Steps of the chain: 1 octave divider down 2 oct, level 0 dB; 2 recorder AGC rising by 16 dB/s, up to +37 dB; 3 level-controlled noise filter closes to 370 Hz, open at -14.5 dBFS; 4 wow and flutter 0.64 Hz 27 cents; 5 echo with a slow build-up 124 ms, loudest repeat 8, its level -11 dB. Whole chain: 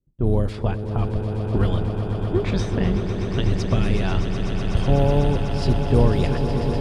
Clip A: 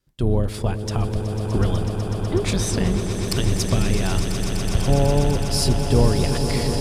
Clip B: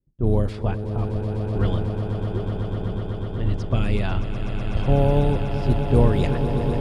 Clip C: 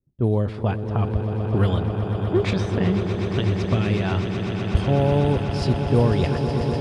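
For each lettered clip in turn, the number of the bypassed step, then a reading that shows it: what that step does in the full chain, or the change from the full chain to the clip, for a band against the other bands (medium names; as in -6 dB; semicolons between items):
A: 3, 4 kHz band +7.0 dB; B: 2, momentary loudness spread change +3 LU; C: 1, momentary loudness spread change -1 LU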